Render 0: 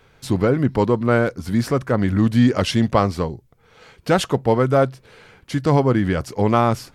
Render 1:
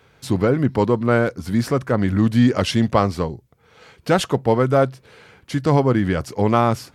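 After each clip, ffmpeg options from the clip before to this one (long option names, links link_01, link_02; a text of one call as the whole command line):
ffmpeg -i in.wav -af "highpass=54" out.wav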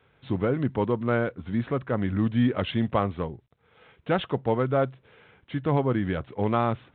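ffmpeg -i in.wav -af "volume=-7.5dB" -ar 8000 -c:a adpcm_g726 -b:a 40k out.wav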